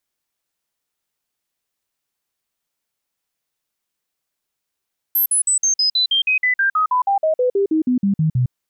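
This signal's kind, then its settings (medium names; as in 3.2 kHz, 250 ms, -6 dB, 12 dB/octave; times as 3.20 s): stepped sine 12.7 kHz down, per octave 3, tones 21, 0.11 s, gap 0.05 s -13.5 dBFS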